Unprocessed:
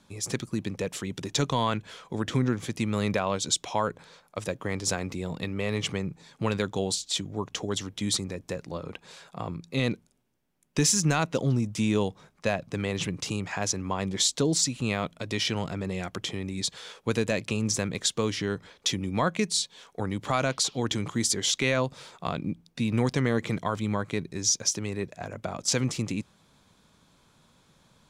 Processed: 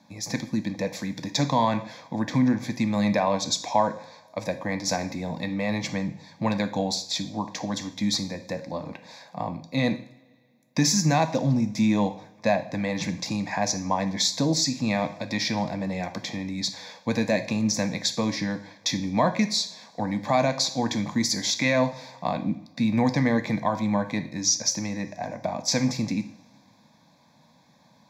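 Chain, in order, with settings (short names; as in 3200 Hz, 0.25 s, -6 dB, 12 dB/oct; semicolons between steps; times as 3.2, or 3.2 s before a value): HPF 150 Hz 12 dB/oct; bell 350 Hz +8.5 dB 2.3 oct; fixed phaser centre 2000 Hz, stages 8; two-slope reverb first 0.52 s, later 2.2 s, from -22 dB, DRR 7.5 dB; gain +3 dB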